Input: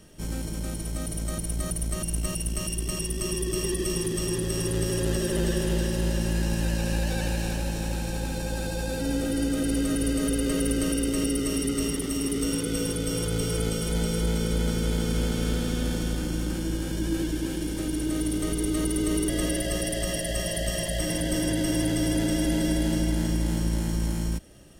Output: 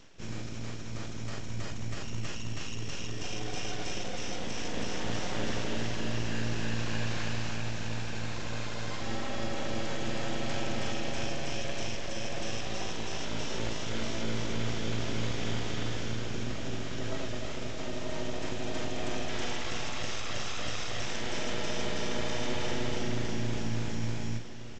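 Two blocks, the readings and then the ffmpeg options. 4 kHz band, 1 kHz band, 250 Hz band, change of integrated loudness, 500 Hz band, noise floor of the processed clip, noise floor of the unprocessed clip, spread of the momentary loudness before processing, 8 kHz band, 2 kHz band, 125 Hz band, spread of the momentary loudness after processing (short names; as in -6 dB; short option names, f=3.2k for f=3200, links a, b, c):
-3.0 dB, +1.0 dB, -11.0 dB, -8.0 dB, -7.0 dB, -34 dBFS, -32 dBFS, 5 LU, -11.0 dB, -1.5 dB, -7.5 dB, 5 LU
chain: -filter_complex "[0:a]equalizer=f=2.2k:t=o:w=1.5:g=7.5,areverse,acompressor=mode=upward:threshold=-32dB:ratio=2.5,areverse,aeval=exprs='abs(val(0))':c=same,asplit=2[a][b];[b]adelay=44,volume=-8dB[c];[a][c]amix=inputs=2:normalize=0,asplit=2[d][e];[e]aecho=0:1:1162:0.211[f];[d][f]amix=inputs=2:normalize=0,volume=-6dB" -ar 16000 -c:a libvorbis -b:a 96k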